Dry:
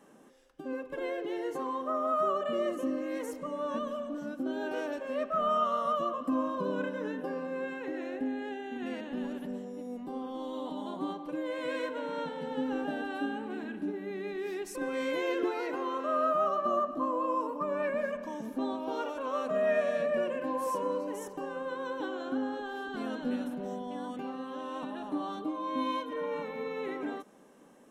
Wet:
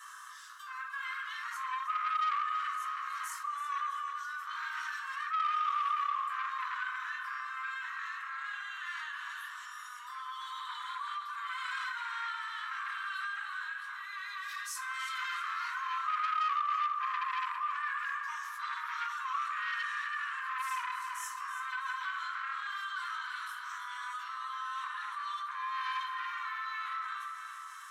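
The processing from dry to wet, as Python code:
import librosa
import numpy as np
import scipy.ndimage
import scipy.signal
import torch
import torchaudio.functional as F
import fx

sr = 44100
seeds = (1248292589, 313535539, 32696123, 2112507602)

p1 = fx.peak_eq(x, sr, hz=2500.0, db=-13.0, octaves=0.66)
p2 = fx.room_shoebox(p1, sr, seeds[0], volume_m3=250.0, walls='furnished', distance_m=4.2)
p3 = 10.0 ** (-21.5 / 20.0) * np.tanh(p2 / 10.0 ** (-21.5 / 20.0))
p4 = scipy.signal.sosfilt(scipy.signal.butter(16, 1100.0, 'highpass', fs=sr, output='sos'), p3)
p5 = fx.tilt_eq(p4, sr, slope=-2.5)
p6 = p5 + fx.echo_feedback(p5, sr, ms=328, feedback_pct=42, wet_db=-12.0, dry=0)
p7 = fx.env_flatten(p6, sr, amount_pct=50)
y = p7 * librosa.db_to_amplitude(-2.5)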